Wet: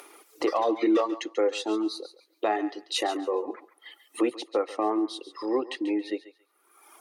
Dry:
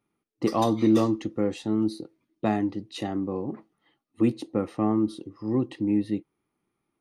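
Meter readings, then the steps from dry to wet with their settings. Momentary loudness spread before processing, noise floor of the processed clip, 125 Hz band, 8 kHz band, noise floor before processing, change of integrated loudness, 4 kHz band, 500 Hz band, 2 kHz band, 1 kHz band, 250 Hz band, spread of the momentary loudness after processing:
11 LU, −68 dBFS, below −25 dB, can't be measured, −81 dBFS, −1.5 dB, +7.0 dB, +2.5 dB, +5.5 dB, +2.5 dB, −4.5 dB, 11 LU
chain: reverb reduction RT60 1.2 s
treble cut that deepens with the level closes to 2,400 Hz, closed at −20 dBFS
inverse Chebyshev high-pass filter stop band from 190 Hz, stop band 40 dB
high-shelf EQ 7,200 Hz +7.5 dB
in parallel at +3 dB: upward compression, threshold −32 dBFS
on the sum: brickwall limiter −15.5 dBFS, peak gain reduction 9.5 dB
on a send: feedback echo with a high-pass in the loop 139 ms, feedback 24%, high-pass 730 Hz, level −12.5 dB

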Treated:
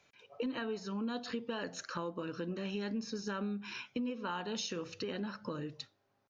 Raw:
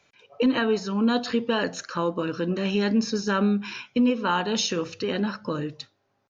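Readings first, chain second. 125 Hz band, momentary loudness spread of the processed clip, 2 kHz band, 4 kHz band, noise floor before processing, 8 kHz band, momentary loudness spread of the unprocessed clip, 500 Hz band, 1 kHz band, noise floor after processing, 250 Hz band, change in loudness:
−13.0 dB, 4 LU, −13.0 dB, −12.5 dB, −72 dBFS, can't be measured, 7 LU, −13.5 dB, −14.0 dB, −77 dBFS, −14.5 dB, −14.0 dB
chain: downward compressor 3 to 1, threshold −33 dBFS, peak gain reduction 12 dB
level −5 dB

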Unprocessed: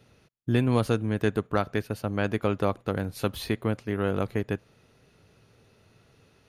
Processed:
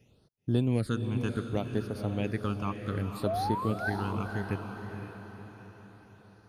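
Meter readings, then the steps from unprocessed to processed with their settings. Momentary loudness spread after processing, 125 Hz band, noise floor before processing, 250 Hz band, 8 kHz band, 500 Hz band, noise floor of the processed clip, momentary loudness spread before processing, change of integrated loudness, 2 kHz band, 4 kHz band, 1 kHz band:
16 LU, −2.0 dB, −63 dBFS, −3.0 dB, −5.5 dB, −6.5 dB, −64 dBFS, 7 LU, −4.0 dB, −3.5 dB, −5.5 dB, −0.5 dB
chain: sound drawn into the spectrogram rise, 0:03.26–0:03.90, 610–1,600 Hz −26 dBFS
all-pass phaser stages 8, 0.66 Hz, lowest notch 530–2,600 Hz
on a send: feedback delay with all-pass diffusion 508 ms, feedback 49%, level −7 dB
on the sum: level −4 dB

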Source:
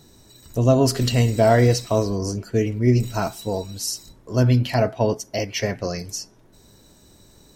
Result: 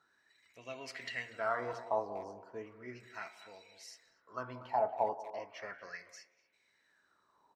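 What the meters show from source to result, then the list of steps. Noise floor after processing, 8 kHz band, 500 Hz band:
−75 dBFS, −28.0 dB, −18.0 dB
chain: on a send: feedback echo with a band-pass in the loop 181 ms, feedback 40%, band-pass 500 Hz, level −14 dB
on the sum: LFO wah 0.35 Hz 800–2,300 Hz, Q 9.2
hum removal 116.9 Hz, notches 21
far-end echo of a speakerphone 240 ms, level −15 dB
level +2.5 dB

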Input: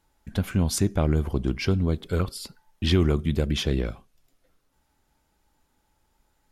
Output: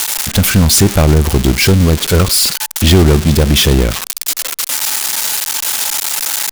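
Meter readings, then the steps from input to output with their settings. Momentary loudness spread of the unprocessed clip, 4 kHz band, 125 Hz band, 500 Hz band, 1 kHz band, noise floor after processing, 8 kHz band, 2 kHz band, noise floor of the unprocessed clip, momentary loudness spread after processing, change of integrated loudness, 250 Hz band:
10 LU, +20.0 dB, +13.5 dB, +13.5 dB, +17.0 dB, −29 dBFS, +25.0 dB, +18.5 dB, −71 dBFS, 7 LU, +14.0 dB, +12.5 dB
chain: spike at every zero crossing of −16 dBFS
high-shelf EQ 7,800 Hz −10 dB
leveller curve on the samples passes 2
level +8.5 dB

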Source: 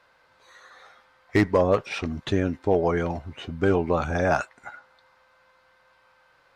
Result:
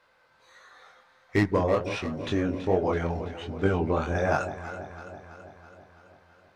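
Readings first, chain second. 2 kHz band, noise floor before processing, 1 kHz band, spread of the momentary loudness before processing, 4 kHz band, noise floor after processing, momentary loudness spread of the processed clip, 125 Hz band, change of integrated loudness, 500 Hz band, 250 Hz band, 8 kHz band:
−2.5 dB, −62 dBFS, −2.5 dB, 14 LU, −2.5 dB, −63 dBFS, 17 LU, −1.5 dB, −3.5 dB, −3.0 dB, −2.5 dB, can't be measured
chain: chorus effect 1.4 Hz, delay 20 ms, depth 5.8 ms
delay that swaps between a low-pass and a high-pass 165 ms, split 830 Hz, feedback 78%, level −10.5 dB

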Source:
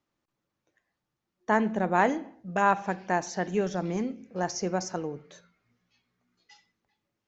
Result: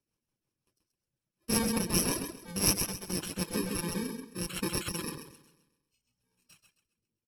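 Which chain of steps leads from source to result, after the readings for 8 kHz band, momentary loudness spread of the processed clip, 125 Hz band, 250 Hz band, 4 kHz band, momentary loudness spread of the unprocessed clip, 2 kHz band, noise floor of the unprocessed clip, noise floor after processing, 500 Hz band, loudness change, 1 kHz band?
can't be measured, 11 LU, −1.0 dB, −3.0 dB, +9.5 dB, 11 LU, −8.5 dB, −84 dBFS, below −85 dBFS, −9.0 dB, −3.0 dB, −15.0 dB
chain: samples in bit-reversed order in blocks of 64 samples
rotating-speaker cabinet horn 5.5 Hz, later 0.7 Hz, at 0:03.11
repeating echo 132 ms, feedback 45%, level −3.5 dB
reverb reduction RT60 1 s
linearly interpolated sample-rate reduction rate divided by 2×

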